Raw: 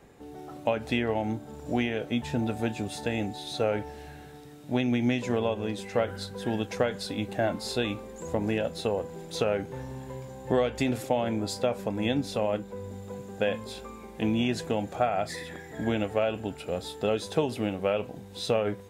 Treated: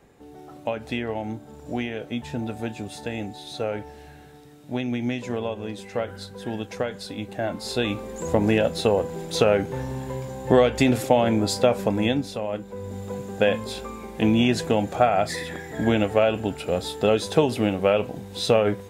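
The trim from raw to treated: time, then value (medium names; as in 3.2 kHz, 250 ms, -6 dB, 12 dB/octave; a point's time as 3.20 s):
7.39 s -1 dB
8.15 s +8 dB
11.93 s +8 dB
12.42 s -2 dB
13.01 s +7 dB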